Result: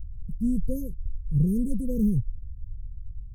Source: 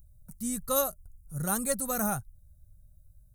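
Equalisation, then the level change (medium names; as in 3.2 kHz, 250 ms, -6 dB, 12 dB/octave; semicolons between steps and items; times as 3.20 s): brick-wall FIR band-stop 520–4600 Hz; RIAA curve playback; peaking EQ 6.2 kHz -13.5 dB 2.3 oct; +2.0 dB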